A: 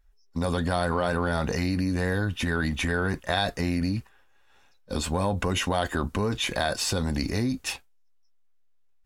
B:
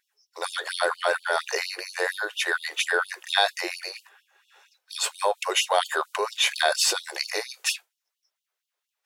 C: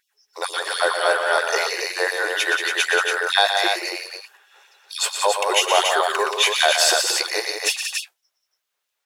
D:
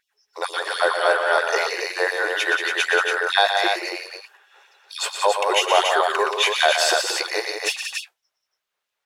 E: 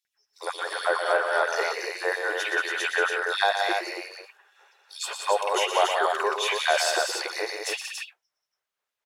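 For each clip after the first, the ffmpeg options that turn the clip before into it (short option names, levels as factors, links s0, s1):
-af "lowshelf=f=190:g=-9.5,afftfilt=real='re*gte(b*sr/1024,320*pow(2800/320,0.5+0.5*sin(2*PI*4.3*pts/sr)))':imag='im*gte(b*sr/1024,320*pow(2800/320,0.5+0.5*sin(2*PI*4.3*pts/sr)))':win_size=1024:overlap=0.75,volume=2.11"
-af "aecho=1:1:119.5|180.8|282.8:0.398|0.447|0.562,volume=1.58"
-af "highshelf=f=4700:g=-9,volume=1.12"
-filter_complex "[0:a]acrossover=split=3300[s0][s1];[s0]adelay=50[s2];[s2][s1]amix=inputs=2:normalize=0,volume=0.596"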